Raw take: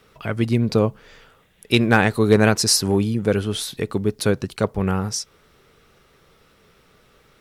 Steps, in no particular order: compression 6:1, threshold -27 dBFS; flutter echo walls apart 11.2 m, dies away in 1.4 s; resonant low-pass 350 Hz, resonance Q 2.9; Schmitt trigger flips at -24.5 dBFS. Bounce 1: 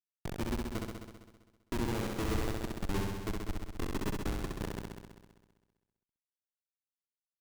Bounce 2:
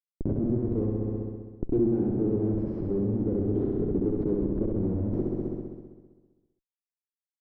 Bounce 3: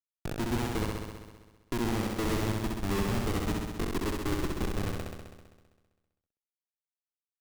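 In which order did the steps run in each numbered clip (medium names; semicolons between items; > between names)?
resonant low-pass > compression > Schmitt trigger > flutter echo; Schmitt trigger > flutter echo > compression > resonant low-pass; compression > resonant low-pass > Schmitt trigger > flutter echo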